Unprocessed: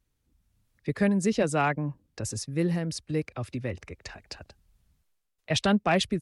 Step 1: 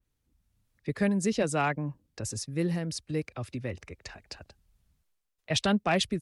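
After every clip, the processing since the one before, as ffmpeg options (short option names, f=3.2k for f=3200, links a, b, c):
-af "adynamicequalizer=threshold=0.01:dfrequency=2700:dqfactor=0.7:tfrequency=2700:tqfactor=0.7:attack=5:release=100:ratio=0.375:range=1.5:mode=boostabove:tftype=highshelf,volume=-2.5dB"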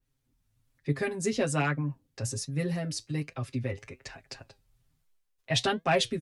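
-af "aecho=1:1:7.5:0.91,flanger=delay=5.9:depth=4.3:regen=73:speed=1.2:shape=triangular,volume=2.5dB"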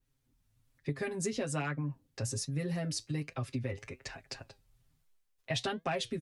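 -af "acompressor=threshold=-31dB:ratio=6"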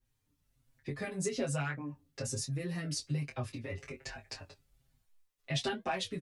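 -filter_complex "[0:a]asplit=2[a][b];[b]adelay=21,volume=-6.5dB[c];[a][c]amix=inputs=2:normalize=0,asplit=2[d][e];[e]adelay=5.8,afreqshift=-1.2[f];[d][f]amix=inputs=2:normalize=1,volume=2dB"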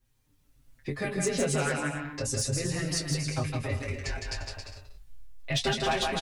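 -af "aecho=1:1:160|272|350.4|405.3|443.7:0.631|0.398|0.251|0.158|0.1,asubboost=boost=8.5:cutoff=57,asoftclip=type=hard:threshold=-27dB,volume=6.5dB"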